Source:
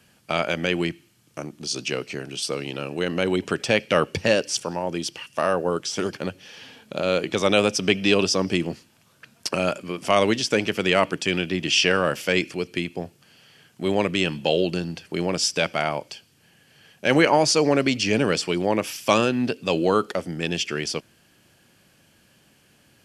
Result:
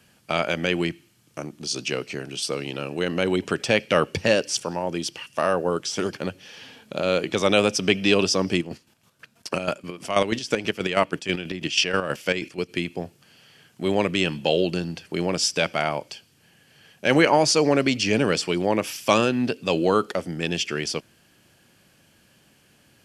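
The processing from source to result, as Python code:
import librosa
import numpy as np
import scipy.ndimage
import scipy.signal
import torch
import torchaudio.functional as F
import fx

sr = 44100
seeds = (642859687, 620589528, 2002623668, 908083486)

y = fx.chopper(x, sr, hz=6.2, depth_pct=60, duty_pct=40, at=(8.57, 12.68), fade=0.02)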